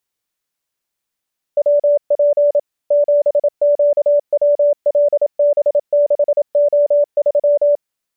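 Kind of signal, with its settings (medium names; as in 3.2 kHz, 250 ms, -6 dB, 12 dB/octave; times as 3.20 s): Morse "WP 7QWLB6O3" 27 wpm 582 Hz -9 dBFS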